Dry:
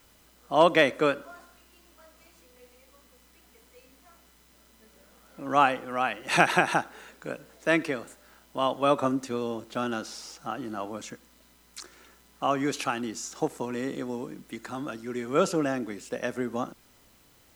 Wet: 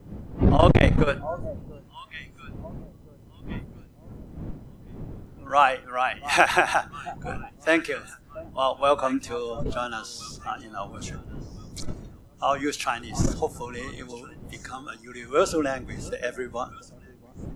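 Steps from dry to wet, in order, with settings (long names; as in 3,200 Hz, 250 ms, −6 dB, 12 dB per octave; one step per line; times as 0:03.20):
wind on the microphone 190 Hz −27 dBFS
on a send: delay that swaps between a low-pass and a high-pass 683 ms, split 990 Hz, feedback 61%, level −13.5 dB
on the sum: noise reduction from a noise print of the clip's start 13 dB
saturating transformer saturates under 310 Hz
level +3 dB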